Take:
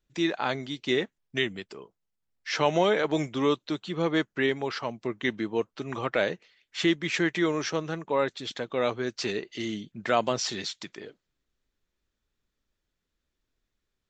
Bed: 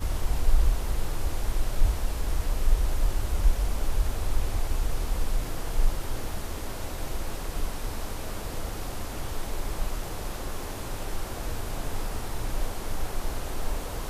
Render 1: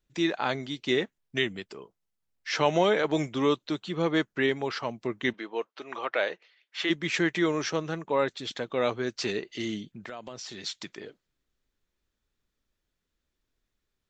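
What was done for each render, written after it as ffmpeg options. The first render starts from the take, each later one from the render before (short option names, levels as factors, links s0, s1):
-filter_complex "[0:a]asplit=3[s0][s1][s2];[s0]afade=t=out:st=5.32:d=0.02[s3];[s1]highpass=500,lowpass=4600,afade=t=in:st=5.32:d=0.02,afade=t=out:st=6.89:d=0.02[s4];[s2]afade=t=in:st=6.89:d=0.02[s5];[s3][s4][s5]amix=inputs=3:normalize=0,asplit=3[s6][s7][s8];[s6]afade=t=out:st=9.85:d=0.02[s9];[s7]acompressor=threshold=0.0126:ratio=5:attack=3.2:release=140:knee=1:detection=peak,afade=t=in:st=9.85:d=0.02,afade=t=out:st=10.65:d=0.02[s10];[s8]afade=t=in:st=10.65:d=0.02[s11];[s9][s10][s11]amix=inputs=3:normalize=0"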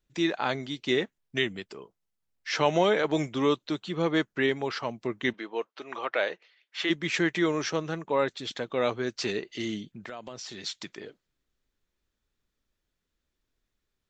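-af anull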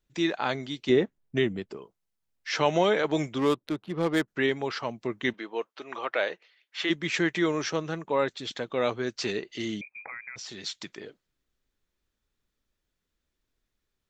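-filter_complex "[0:a]asettb=1/sr,asplit=3[s0][s1][s2];[s0]atrim=end=0.894[s3];[s1]atrim=start=0.89:end=1.77,asetpts=PTS-STARTPTS,afade=t=in:d=0.004:c=qsin,afade=t=out:st=0.876:d=0.004:c=qsin,tiltshelf=f=1100:g=6.5[s4];[s2]atrim=start=1.766[s5];[s3][s4]acrossfade=d=0.004:c1=hsin:c2=qsin[s6];[s6][s5]acrossfade=d=0.004:c1=qsin:c2=hsin,asettb=1/sr,asplit=3[s7][s8][s9];[s7]atrim=end=3.384[s10];[s8]atrim=start=3.38:end=4.28,asetpts=PTS-STARTPTS,afade=t=in:d=0.004:c=qsin,afade=t=out:st=0.896:d=0.004:c=qsin,adynamicsmooth=sensitivity=5:basefreq=880[s11];[s9]atrim=start=4.276[s12];[s10][s11]acrossfade=d=0.004:c1=hsin:c2=qsin[s13];[s13][s12]acrossfade=d=0.004:c1=qsin:c2=hsin,asettb=1/sr,asplit=3[s14][s15][s16];[s14]atrim=end=9.814[s17];[s15]atrim=start=9.81:end=10.36,asetpts=PTS-STARTPTS,afade=t=in:d=0.004:c=qsin,afade=t=out:st=0.546:d=0.004:c=qsin,lowpass=f=2200:t=q:w=0.5098,lowpass=f=2200:t=q:w=0.6013,lowpass=f=2200:t=q:w=0.9,lowpass=f=2200:t=q:w=2.563,afreqshift=-2600[s18];[s16]atrim=start=10.356[s19];[s17][s18]acrossfade=d=0.004:c1=hsin:c2=qsin[s20];[s20][s19]acrossfade=d=0.004:c1=qsin:c2=hsin"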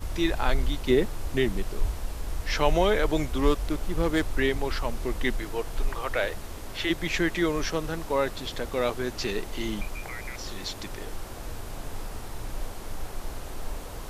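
-filter_complex "[1:a]volume=0.596[s0];[0:a][s0]amix=inputs=2:normalize=0"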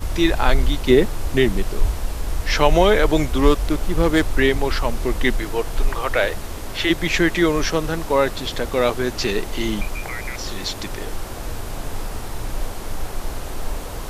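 -af "volume=2.51,alimiter=limit=0.794:level=0:latency=1"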